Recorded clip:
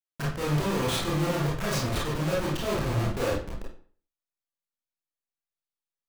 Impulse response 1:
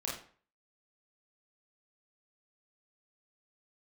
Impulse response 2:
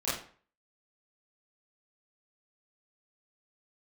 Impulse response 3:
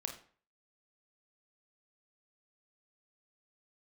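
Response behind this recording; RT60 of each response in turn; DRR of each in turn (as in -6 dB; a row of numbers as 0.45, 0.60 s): 1; 0.45, 0.45, 0.45 s; -5.0, -12.0, 3.5 dB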